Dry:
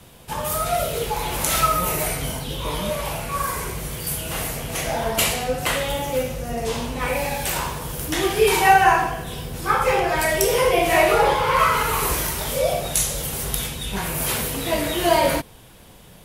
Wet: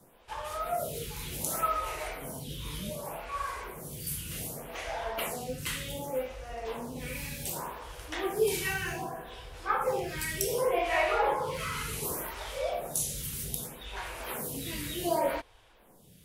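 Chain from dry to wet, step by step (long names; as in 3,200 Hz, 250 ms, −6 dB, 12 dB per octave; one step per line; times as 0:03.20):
0:11.33–0:12.04: low-pass filter 12,000 Hz 24 dB per octave
log-companded quantiser 8 bits
phaser with staggered stages 0.66 Hz
level −8.5 dB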